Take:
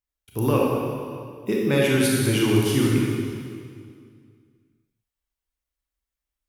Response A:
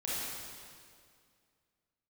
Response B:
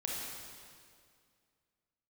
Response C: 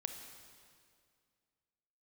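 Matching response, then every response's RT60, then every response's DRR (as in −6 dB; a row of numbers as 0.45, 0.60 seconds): B; 2.2, 2.2, 2.2 seconds; −8.5, −3.5, 5.5 decibels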